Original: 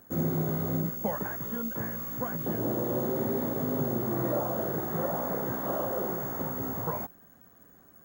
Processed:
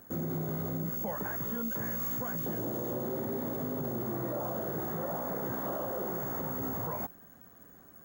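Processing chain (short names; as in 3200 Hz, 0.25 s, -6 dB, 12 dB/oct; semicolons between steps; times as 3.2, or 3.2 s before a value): 1.71–2.93 bell 8400 Hz +4.5 dB 2.6 oct; limiter -28 dBFS, peak gain reduction 10.5 dB; gain +1.5 dB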